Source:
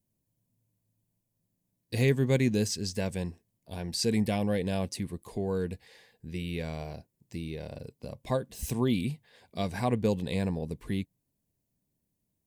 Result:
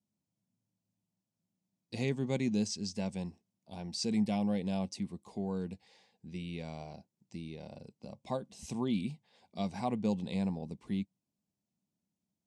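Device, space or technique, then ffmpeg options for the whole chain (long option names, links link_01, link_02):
car door speaker: -af "highpass=110,equalizer=frequency=120:width_type=q:width=4:gain=-4,equalizer=frequency=200:width_type=q:width=4:gain=7,equalizer=frequency=450:width_type=q:width=4:gain=-4,equalizer=frequency=810:width_type=q:width=4:gain=6,equalizer=frequency=1700:width_type=q:width=4:gain=-9,equalizer=frequency=5500:width_type=q:width=4:gain=3,lowpass=frequency=8300:width=0.5412,lowpass=frequency=8300:width=1.3066,volume=-6.5dB"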